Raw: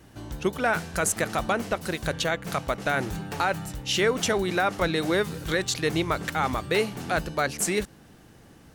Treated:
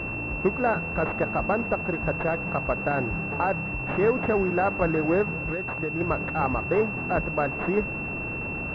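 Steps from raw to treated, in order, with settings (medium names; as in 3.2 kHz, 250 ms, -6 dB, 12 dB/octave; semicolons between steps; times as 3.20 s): one-bit delta coder 64 kbps, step -29.5 dBFS; 5.35–6.01 s: compression 4:1, threshold -29 dBFS, peak gain reduction 8 dB; class-D stage that switches slowly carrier 2.7 kHz; trim +2 dB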